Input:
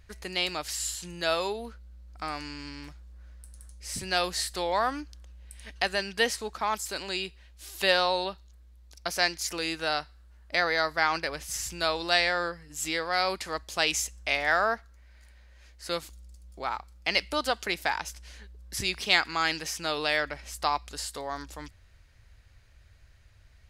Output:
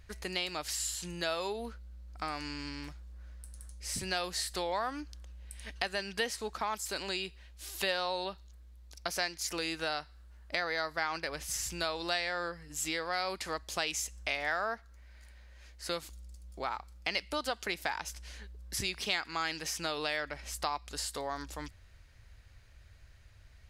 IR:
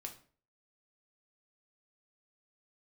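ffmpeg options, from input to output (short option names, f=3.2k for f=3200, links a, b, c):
-af "acompressor=threshold=-33dB:ratio=2.5"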